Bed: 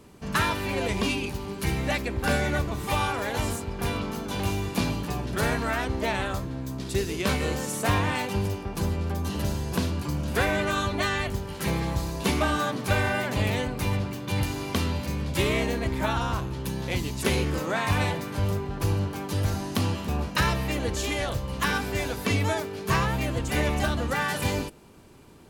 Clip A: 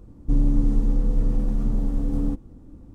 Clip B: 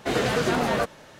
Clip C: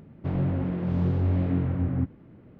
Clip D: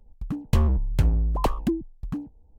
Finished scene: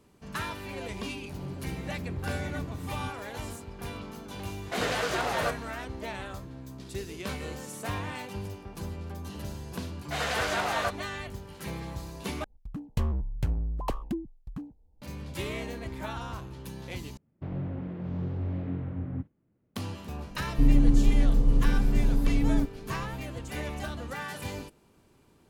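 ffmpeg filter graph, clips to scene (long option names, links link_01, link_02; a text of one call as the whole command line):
ffmpeg -i bed.wav -i cue0.wav -i cue1.wav -i cue2.wav -i cue3.wav -filter_complex "[3:a]asplit=2[link_01][link_02];[2:a]asplit=2[link_03][link_04];[0:a]volume=-10dB[link_05];[link_03]highpass=530[link_06];[link_04]highpass=frequency=630:width=0.5412,highpass=frequency=630:width=1.3066[link_07];[link_02]agate=range=-14dB:threshold=-40dB:ratio=16:release=100:detection=peak[link_08];[1:a]aecho=1:1:7.2:0.34[link_09];[link_05]asplit=3[link_10][link_11][link_12];[link_10]atrim=end=12.444[link_13];[4:a]atrim=end=2.58,asetpts=PTS-STARTPTS,volume=-8dB[link_14];[link_11]atrim=start=15.016:end=17.174[link_15];[link_08]atrim=end=2.59,asetpts=PTS-STARTPTS,volume=-8dB[link_16];[link_12]atrim=start=19.756[link_17];[link_01]atrim=end=2.59,asetpts=PTS-STARTPTS,volume=-13dB,afade=type=in:duration=0.004:curve=hsin,afade=type=out:start_time=2.586:duration=0.004:curve=hsin,adelay=1040[link_18];[link_06]atrim=end=1.19,asetpts=PTS-STARTPTS,volume=-3dB,afade=type=in:duration=0.004:curve=hsin,afade=type=out:start_time=1.186:duration=0.004:curve=hsin,adelay=4660[link_19];[link_07]atrim=end=1.19,asetpts=PTS-STARTPTS,volume=-2.5dB,afade=type=in:duration=0.1,afade=type=out:start_time=1.09:duration=0.1,adelay=10050[link_20];[link_09]atrim=end=2.94,asetpts=PTS-STARTPTS,volume=-1.5dB,afade=type=in:duration=0.004:curve=hsin,afade=type=out:start_time=2.936:duration=0.004:curve=hsin,adelay=20300[link_21];[link_13][link_14]acrossfade=duration=0.004:curve1=hsin:curve2=hsin[link_22];[link_22][link_15]acrossfade=duration=0.004:curve1=hsin:curve2=hsin[link_23];[link_23][link_16]acrossfade=duration=0.004:curve1=hsin:curve2=hsin[link_24];[link_24][link_17]acrossfade=duration=0.004:curve1=hsin:curve2=hsin[link_25];[link_25][link_18][link_19][link_20][link_21]amix=inputs=5:normalize=0" out.wav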